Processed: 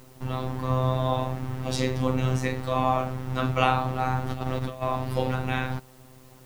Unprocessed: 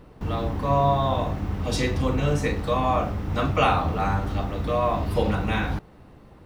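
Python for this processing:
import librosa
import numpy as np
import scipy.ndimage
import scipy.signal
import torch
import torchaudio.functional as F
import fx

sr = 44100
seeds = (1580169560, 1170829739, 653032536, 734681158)

y = fx.over_compress(x, sr, threshold_db=-28.0, ratio=-0.5, at=(4.26, 4.81), fade=0.02)
y = fx.robotise(y, sr, hz=129.0)
y = fx.dmg_noise_colour(y, sr, seeds[0], colour='white', level_db=-59.0)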